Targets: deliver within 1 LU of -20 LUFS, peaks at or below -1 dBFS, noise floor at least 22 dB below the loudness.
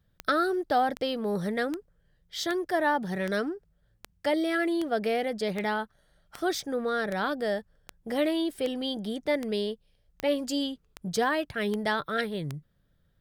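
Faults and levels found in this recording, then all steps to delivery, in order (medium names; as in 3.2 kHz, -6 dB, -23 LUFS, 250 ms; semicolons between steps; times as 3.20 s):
clicks found 17; loudness -29.5 LUFS; peak level -14.0 dBFS; loudness target -20.0 LUFS
-> de-click; trim +9.5 dB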